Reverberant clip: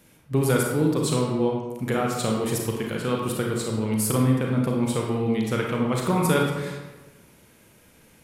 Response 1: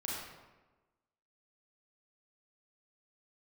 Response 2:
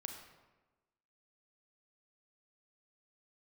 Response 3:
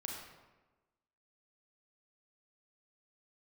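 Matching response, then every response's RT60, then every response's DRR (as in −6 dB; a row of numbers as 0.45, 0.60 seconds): 3; 1.2, 1.2, 1.2 seconds; −5.5, 3.5, −1.0 decibels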